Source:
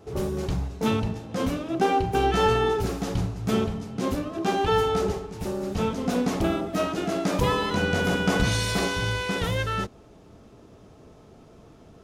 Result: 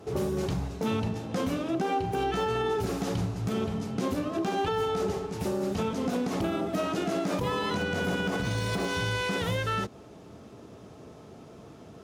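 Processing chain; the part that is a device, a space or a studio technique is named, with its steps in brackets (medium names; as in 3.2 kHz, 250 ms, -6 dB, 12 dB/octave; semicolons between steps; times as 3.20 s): podcast mastering chain (high-pass 90 Hz 12 dB/octave; de-esser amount 85%; compression 3:1, threshold -29 dBFS, peak gain reduction 9 dB; peak limiter -23 dBFS, peak gain reduction 5 dB; trim +3.5 dB; MP3 112 kbps 44.1 kHz)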